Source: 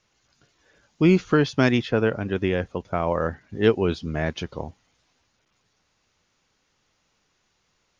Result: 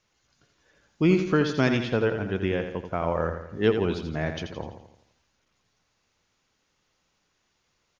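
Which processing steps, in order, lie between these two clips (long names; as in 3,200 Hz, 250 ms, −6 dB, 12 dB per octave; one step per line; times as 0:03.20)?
repeating echo 84 ms, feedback 49%, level −8 dB
level −3.5 dB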